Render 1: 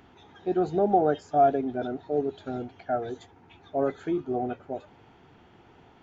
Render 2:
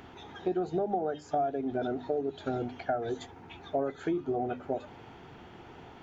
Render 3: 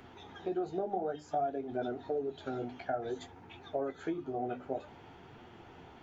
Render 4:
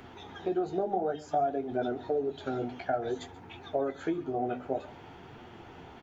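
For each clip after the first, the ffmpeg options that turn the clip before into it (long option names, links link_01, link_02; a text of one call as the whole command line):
ffmpeg -i in.wav -af "acompressor=threshold=-33dB:ratio=10,bandreject=frequency=50:width_type=h:width=6,bandreject=frequency=100:width_type=h:width=6,bandreject=frequency=150:width_type=h:width=6,bandreject=frequency=200:width_type=h:width=6,bandreject=frequency=250:width_type=h:width=6,bandreject=frequency=300:width_type=h:width=6,volume=6dB" out.wav
ffmpeg -i in.wav -filter_complex "[0:a]acrossover=split=270[link_01][link_02];[link_01]alimiter=level_in=13.5dB:limit=-24dB:level=0:latency=1,volume=-13.5dB[link_03];[link_03][link_02]amix=inputs=2:normalize=0,flanger=delay=7.9:depth=9:regen=-37:speed=0.55:shape=triangular" out.wav
ffmpeg -i in.wav -af "aecho=1:1:134:0.0944,volume=4.5dB" out.wav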